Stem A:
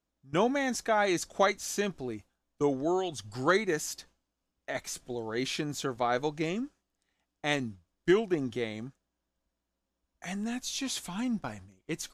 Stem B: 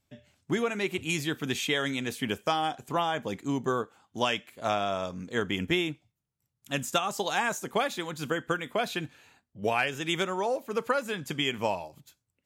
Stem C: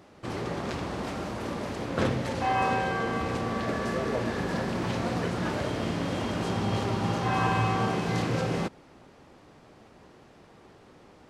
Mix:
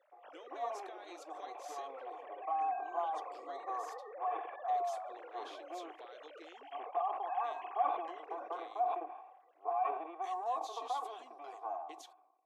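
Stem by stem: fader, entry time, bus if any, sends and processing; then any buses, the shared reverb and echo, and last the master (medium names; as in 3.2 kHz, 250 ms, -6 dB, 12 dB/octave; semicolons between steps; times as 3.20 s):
-14.5 dB, 0.00 s, bus A, no send, peaking EQ 3.4 kHz +9.5 dB 0.65 oct; compression 2.5:1, threshold -35 dBFS, peak gain reduction 11 dB
+2.5 dB, 0.00 s, no bus, no send, comb filter that takes the minimum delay 2.6 ms; cascade formant filter a; decay stretcher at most 59 dB/s
-17.0 dB, 0.00 s, bus A, no send, formants replaced by sine waves
bus A: 0.0 dB, compression 3:1, threshold -49 dBFS, peak gain reduction 11.5 dB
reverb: none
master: elliptic high-pass 310 Hz, stop band 40 dB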